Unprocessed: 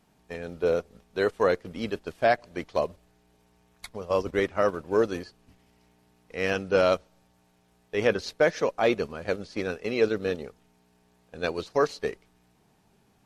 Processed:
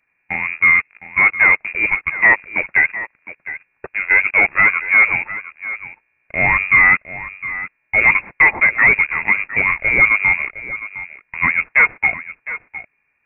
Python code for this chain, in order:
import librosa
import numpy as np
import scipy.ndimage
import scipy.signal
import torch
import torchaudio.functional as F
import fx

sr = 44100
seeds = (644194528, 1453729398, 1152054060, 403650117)

p1 = scipy.signal.sosfilt(scipy.signal.butter(2, 100.0, 'highpass', fs=sr, output='sos'), x)
p2 = fx.leveller(p1, sr, passes=3)
p3 = p2 + fx.echo_single(p2, sr, ms=710, db=-14.5, dry=0)
p4 = fx.freq_invert(p3, sr, carrier_hz=2600)
y = p4 * librosa.db_to_amplitude(3.5)